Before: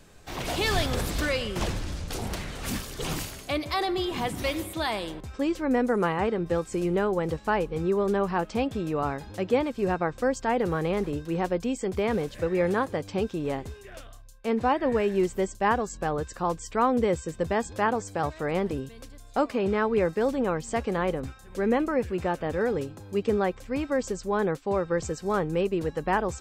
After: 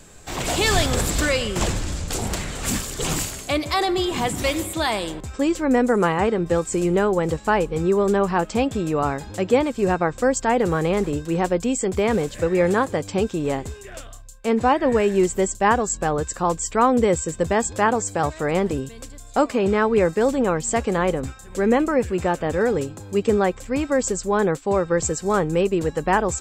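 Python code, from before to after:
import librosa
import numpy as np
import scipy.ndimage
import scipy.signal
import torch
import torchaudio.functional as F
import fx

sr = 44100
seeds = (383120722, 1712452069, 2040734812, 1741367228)

y = fx.peak_eq(x, sr, hz=7500.0, db=11.5, octaves=0.31)
y = y * 10.0 ** (6.0 / 20.0)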